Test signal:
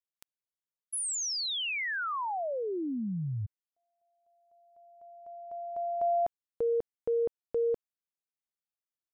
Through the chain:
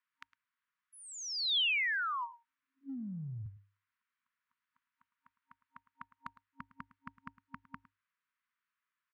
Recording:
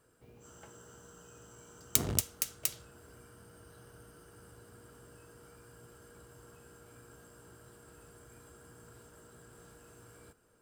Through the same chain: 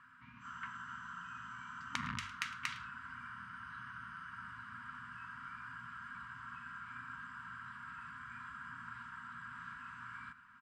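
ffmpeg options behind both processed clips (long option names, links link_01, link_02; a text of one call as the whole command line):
ffmpeg -i in.wav -af "lowpass=frequency=1700:width=0.5412,lowpass=frequency=1700:width=1.3066,afftfilt=real='re*(1-between(b*sr/4096,270,930))':imag='im*(1-between(b*sr/4096,270,930))':win_size=4096:overlap=0.75,aemphasis=mode=production:type=riaa,bandreject=frequency=50:width_type=h:width=6,bandreject=frequency=100:width_type=h:width=6,acompressor=threshold=-49dB:ratio=16:attack=3.3:release=109:knee=1:detection=peak,crystalizer=i=8:c=0,aecho=1:1:108:0.119,volume=10dB" out.wav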